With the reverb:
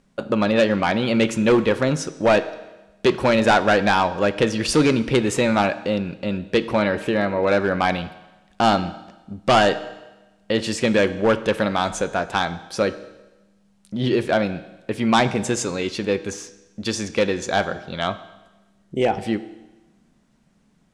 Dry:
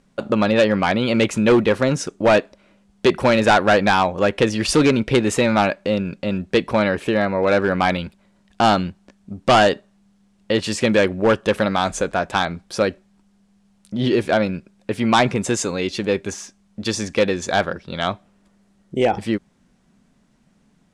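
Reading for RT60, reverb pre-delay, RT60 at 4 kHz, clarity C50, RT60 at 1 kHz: 1.1 s, 6 ms, 1.0 s, 14.5 dB, 1.1 s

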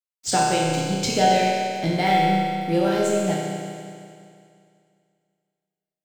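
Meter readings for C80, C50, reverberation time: 0.0 dB, -1.5 dB, 2.3 s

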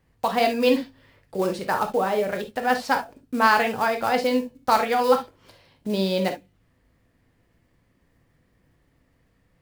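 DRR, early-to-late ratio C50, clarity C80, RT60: 4.5 dB, 10.5 dB, 42.5 dB, not exponential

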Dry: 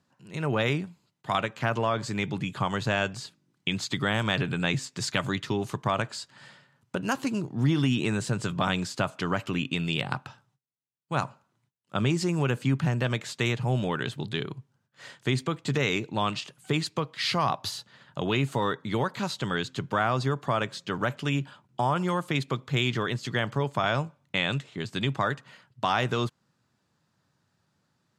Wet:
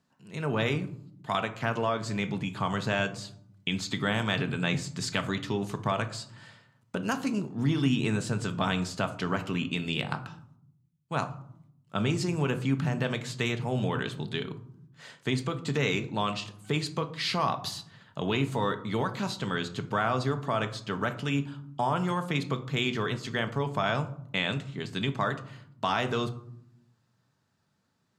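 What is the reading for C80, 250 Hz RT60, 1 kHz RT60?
18.0 dB, 1.2 s, 0.65 s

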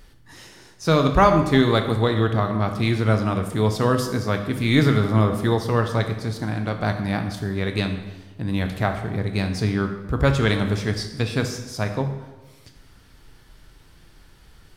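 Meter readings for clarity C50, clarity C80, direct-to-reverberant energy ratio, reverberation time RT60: 8.0 dB, 10.0 dB, 5.5 dB, 1.2 s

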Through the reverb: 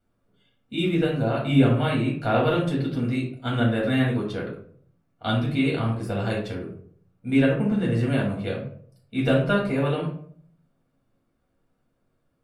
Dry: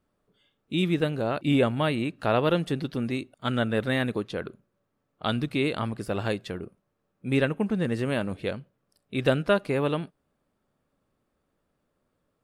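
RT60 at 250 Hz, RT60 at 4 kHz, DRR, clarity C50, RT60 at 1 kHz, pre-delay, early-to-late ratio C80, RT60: 0.65 s, 0.35 s, -4.0 dB, 5.0 dB, 0.50 s, 4 ms, 9.5 dB, 0.60 s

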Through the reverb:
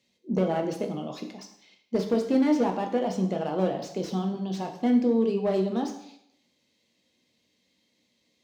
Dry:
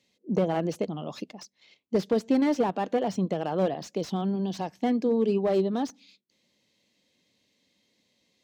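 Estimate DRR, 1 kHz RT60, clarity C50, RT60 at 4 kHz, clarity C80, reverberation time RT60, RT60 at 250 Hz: 3.0 dB, 0.75 s, 8.5 dB, 0.70 s, 11.0 dB, 0.75 s, 0.70 s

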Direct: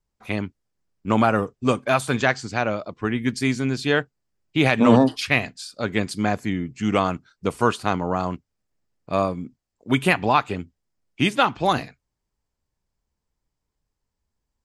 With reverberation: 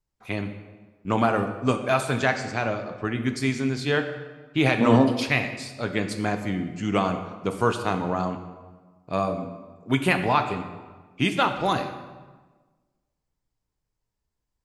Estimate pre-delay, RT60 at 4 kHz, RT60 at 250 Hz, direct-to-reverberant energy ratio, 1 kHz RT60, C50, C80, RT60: 3 ms, 0.95 s, 1.6 s, 6.0 dB, 1.3 s, 9.0 dB, 10.5 dB, 1.3 s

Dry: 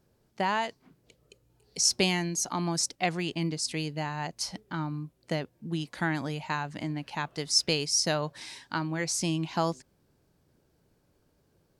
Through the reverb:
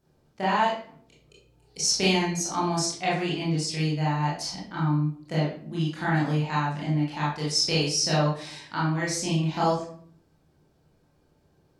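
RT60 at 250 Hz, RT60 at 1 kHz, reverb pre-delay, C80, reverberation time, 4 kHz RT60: 0.65 s, 0.50 s, 23 ms, 8.0 dB, 0.55 s, 0.35 s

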